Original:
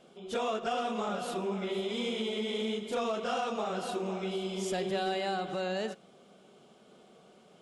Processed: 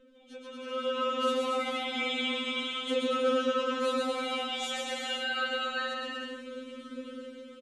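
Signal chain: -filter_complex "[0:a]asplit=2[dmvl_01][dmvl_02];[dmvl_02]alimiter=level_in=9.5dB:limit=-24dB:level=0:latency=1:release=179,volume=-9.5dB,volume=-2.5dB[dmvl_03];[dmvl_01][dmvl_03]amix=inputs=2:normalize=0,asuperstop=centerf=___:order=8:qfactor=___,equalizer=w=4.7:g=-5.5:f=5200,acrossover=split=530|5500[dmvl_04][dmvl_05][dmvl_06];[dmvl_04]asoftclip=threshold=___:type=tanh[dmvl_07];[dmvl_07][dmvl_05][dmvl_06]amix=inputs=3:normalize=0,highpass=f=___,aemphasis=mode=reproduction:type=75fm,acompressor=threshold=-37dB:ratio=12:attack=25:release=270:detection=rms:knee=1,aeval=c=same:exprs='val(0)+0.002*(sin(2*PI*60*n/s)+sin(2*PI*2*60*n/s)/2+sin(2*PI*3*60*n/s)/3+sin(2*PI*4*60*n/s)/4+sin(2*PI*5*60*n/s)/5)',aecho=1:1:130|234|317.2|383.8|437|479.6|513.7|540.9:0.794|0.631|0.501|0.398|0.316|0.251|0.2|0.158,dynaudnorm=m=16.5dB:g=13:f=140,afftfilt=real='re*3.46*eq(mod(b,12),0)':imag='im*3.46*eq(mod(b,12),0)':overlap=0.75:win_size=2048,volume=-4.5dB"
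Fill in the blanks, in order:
850, 2, -39dB, 100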